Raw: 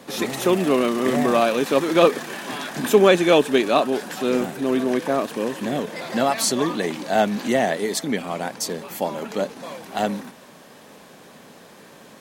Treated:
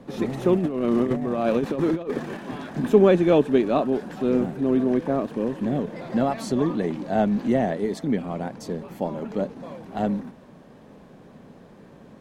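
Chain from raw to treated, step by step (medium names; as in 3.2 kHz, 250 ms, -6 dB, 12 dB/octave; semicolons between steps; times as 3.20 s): tilt EQ -4 dB/octave; 0.55–2.37 s: compressor with a negative ratio -16 dBFS, ratio -0.5; trim -6.5 dB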